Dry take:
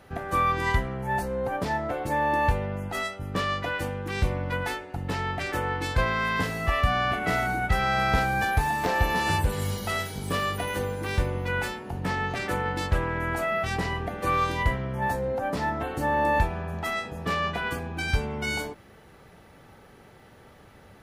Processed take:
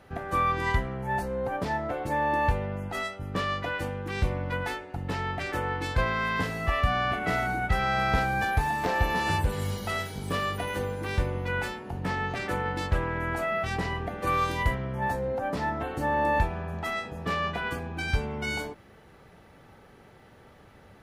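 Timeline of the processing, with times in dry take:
14.27–14.75 s: treble shelf 7.4 kHz +10 dB
whole clip: treble shelf 5.9 kHz -5 dB; trim -1.5 dB

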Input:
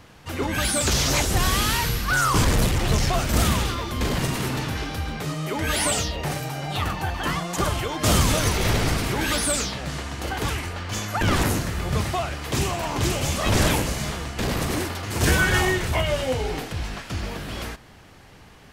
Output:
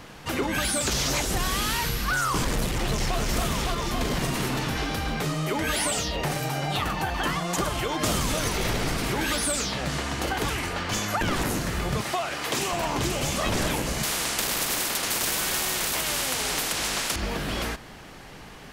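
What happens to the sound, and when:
2.72–3.18 s: echo throw 280 ms, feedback 65%, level -1.5 dB
12.01–12.73 s: high-pass 400 Hz 6 dB/octave
14.03–17.16 s: spectrum-flattening compressor 4:1
whole clip: peaking EQ 86 Hz -10 dB 0.67 oct; compression 4:1, threshold -30 dBFS; trim +5.5 dB

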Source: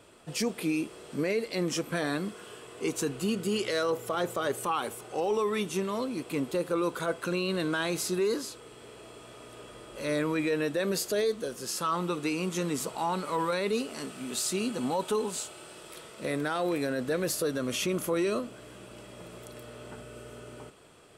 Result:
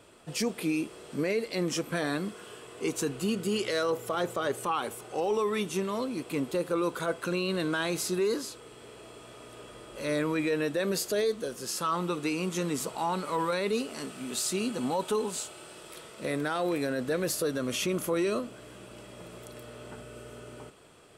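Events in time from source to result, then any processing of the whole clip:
4.26–4.91 s: treble shelf 10 kHz -6.5 dB

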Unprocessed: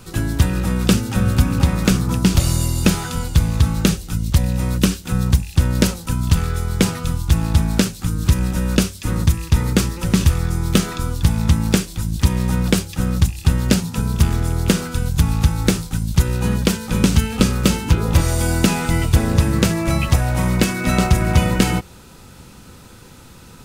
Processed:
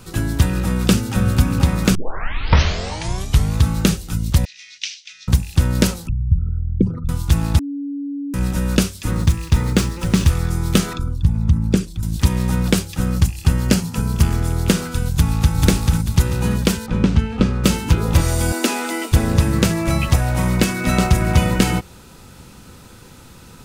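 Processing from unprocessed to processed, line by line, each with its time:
1.95 s: tape start 1.62 s
4.45–5.28 s: elliptic band-pass 2.1–6 kHz, stop band 50 dB
6.07–7.09 s: resonances exaggerated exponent 3
7.59–8.34 s: bleep 283 Hz -23 dBFS
9.11–10.29 s: median filter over 3 samples
10.93–12.03 s: resonances exaggerated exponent 1.5
13.08–14.43 s: band-stop 3.7 kHz, Q 11
15.10–15.57 s: echo throw 440 ms, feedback 35%, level -1.5 dB
16.86–17.64 s: tape spacing loss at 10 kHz 23 dB
18.52–19.12 s: steep high-pass 230 Hz 72 dB/octave

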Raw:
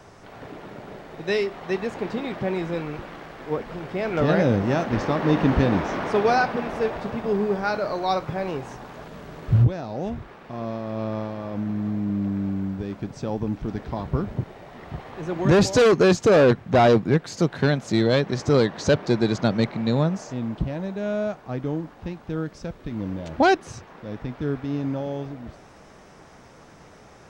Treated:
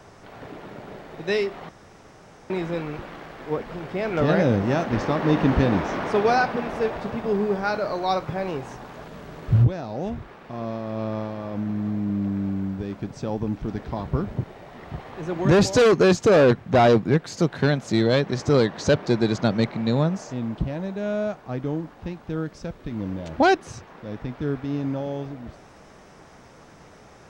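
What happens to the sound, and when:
1.69–2.50 s: room tone

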